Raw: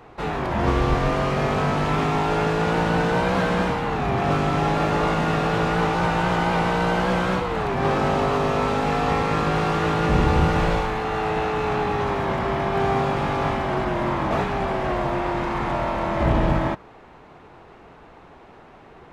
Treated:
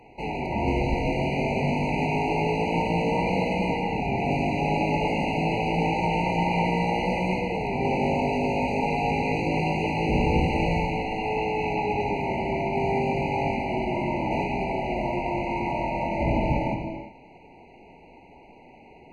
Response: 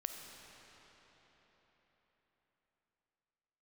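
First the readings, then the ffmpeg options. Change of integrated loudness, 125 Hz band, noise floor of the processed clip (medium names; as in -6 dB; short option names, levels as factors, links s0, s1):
-3.5 dB, -4.0 dB, -50 dBFS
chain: -filter_complex "[0:a]equalizer=f=250:t=o:w=0.67:g=5,equalizer=f=1000:t=o:w=0.67:g=5,equalizer=f=2500:t=o:w=0.67:g=8[s0];[1:a]atrim=start_sample=2205,afade=t=out:st=0.38:d=0.01,atrim=end_sample=17199,asetrate=38808,aresample=44100[s1];[s0][s1]afir=irnorm=-1:irlink=0,afftfilt=real='re*eq(mod(floor(b*sr/1024/980),2),0)':imag='im*eq(mod(floor(b*sr/1024/980),2),0)':win_size=1024:overlap=0.75,volume=0.631"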